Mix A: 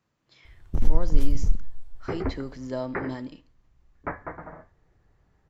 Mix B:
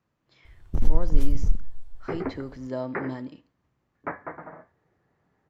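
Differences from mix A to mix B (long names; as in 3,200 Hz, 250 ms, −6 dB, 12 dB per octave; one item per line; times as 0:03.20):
speech: add high-shelf EQ 3,300 Hz −8 dB
second sound: add high-pass filter 160 Hz 12 dB per octave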